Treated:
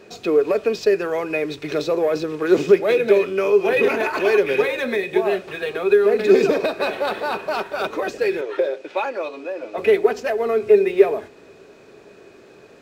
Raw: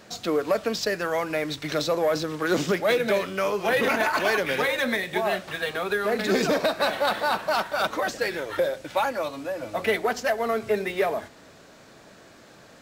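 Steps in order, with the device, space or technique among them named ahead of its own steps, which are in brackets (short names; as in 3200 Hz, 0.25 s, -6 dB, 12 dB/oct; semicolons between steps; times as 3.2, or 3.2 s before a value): 8.41–9.78 three-band isolator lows -22 dB, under 250 Hz, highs -14 dB, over 6800 Hz; inside a helmet (high shelf 4700 Hz -6 dB; small resonant body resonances 400/2500 Hz, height 16 dB, ringing for 45 ms); gain -1 dB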